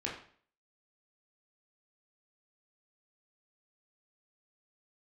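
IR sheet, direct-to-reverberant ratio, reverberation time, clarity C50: -4.0 dB, 0.50 s, 5.5 dB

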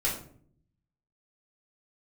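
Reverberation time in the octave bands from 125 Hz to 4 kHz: 1.1 s, 0.90 s, 0.65 s, 0.50 s, 0.40 s, 0.30 s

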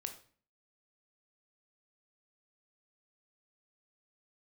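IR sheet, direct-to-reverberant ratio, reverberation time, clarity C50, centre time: 5.5 dB, 0.45 s, 10.5 dB, 12 ms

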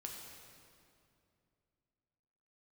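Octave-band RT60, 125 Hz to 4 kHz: 3.2 s, 3.1 s, 2.7 s, 2.4 s, 2.1 s, 1.9 s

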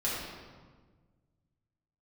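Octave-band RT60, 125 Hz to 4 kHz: 2.4 s, 1.9 s, 1.5 s, 1.4 s, 1.2 s, 1.0 s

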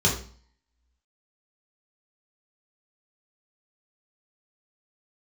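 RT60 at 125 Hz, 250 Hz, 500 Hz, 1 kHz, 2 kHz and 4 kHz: 0.55 s, 0.55 s, 0.45 s, 0.50 s, 0.40 s, 0.45 s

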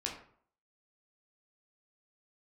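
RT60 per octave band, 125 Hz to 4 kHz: 0.55 s, 0.55 s, 0.55 s, 0.55 s, 0.45 s, 0.35 s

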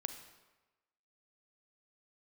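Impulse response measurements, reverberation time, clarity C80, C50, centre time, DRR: 1.1 s, 11.0 dB, 9.0 dB, 16 ms, 8.0 dB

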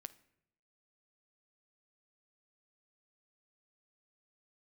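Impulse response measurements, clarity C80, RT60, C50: 21.5 dB, 0.80 s, 18.5 dB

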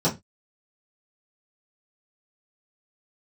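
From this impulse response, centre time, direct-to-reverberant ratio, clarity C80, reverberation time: 17 ms, -10.0 dB, 23.5 dB, 0.20 s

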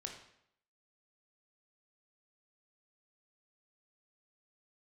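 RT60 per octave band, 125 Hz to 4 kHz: 0.70 s, 0.70 s, 0.70 s, 0.70 s, 0.70 s, 0.60 s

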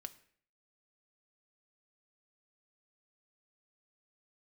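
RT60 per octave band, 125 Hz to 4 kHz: 0.60 s, 0.60 s, 0.60 s, 0.55 s, 0.60 s, 0.50 s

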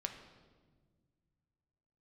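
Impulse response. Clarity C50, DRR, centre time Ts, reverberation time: 8.0 dB, 4.5 dB, 22 ms, 1.6 s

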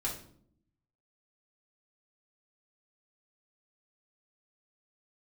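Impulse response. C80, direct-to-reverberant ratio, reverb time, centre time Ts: 12.0 dB, -5.0 dB, 0.60 s, 26 ms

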